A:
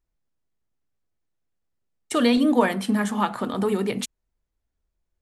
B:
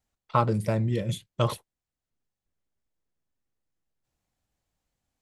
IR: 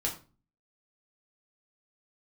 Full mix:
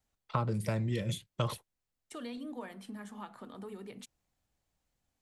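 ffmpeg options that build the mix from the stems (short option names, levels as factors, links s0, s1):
-filter_complex "[0:a]acompressor=threshold=0.0398:ratio=1.5,volume=0.119[s0];[1:a]volume=0.944[s1];[s0][s1]amix=inputs=2:normalize=0,acrossover=split=260|1000[s2][s3][s4];[s2]acompressor=threshold=0.0251:ratio=4[s5];[s3]acompressor=threshold=0.0126:ratio=4[s6];[s4]acompressor=threshold=0.0126:ratio=4[s7];[s5][s6][s7]amix=inputs=3:normalize=0"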